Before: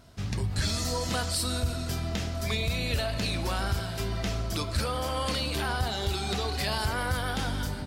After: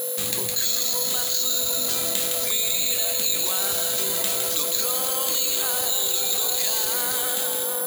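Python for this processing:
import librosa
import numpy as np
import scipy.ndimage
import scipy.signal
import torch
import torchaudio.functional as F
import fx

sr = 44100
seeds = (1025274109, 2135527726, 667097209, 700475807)

y = fx.fade_out_tail(x, sr, length_s=1.27)
y = scipy.signal.sosfilt(scipy.signal.butter(2, 300.0, 'highpass', fs=sr, output='sos'), y)
y = fx.rider(y, sr, range_db=5, speed_s=0.5)
y = fx.ladder_lowpass(y, sr, hz=4400.0, resonance_pct=70)
y = y + 10.0 ** (-50.0 / 20.0) * np.sin(2.0 * np.pi * 500.0 * np.arange(len(y)) / sr)
y = fx.echo_split(y, sr, split_hz=1500.0, low_ms=742, high_ms=160, feedback_pct=52, wet_db=-7.0)
y = (np.kron(y[::4], np.eye(4)[0]) * 4)[:len(y)]
y = fx.env_flatten(y, sr, amount_pct=70)
y = y * 10.0 ** (5.0 / 20.0)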